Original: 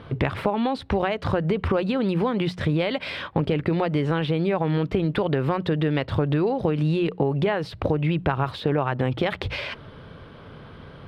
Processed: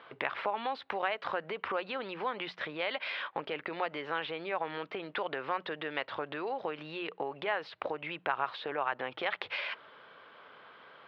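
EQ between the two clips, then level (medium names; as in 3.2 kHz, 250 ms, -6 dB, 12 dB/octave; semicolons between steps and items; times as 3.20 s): Bessel high-pass 1.1 kHz, order 2; distance through air 270 m; 0.0 dB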